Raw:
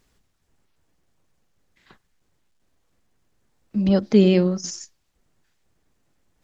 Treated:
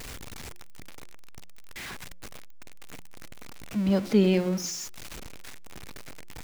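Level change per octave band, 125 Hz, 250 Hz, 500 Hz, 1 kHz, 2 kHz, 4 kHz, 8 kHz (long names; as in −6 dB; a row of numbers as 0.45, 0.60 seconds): −6.0 dB, −6.0 dB, −6.0 dB, −0.5 dB, +0.5 dB, −2.0 dB, can't be measured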